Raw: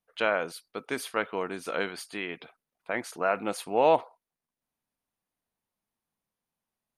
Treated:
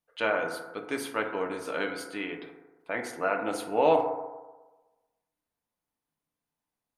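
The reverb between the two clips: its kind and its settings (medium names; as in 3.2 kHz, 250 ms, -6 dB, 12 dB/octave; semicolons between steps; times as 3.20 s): FDN reverb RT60 1.2 s, low-frequency decay 0.85×, high-frequency decay 0.3×, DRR 2.5 dB; trim -2.5 dB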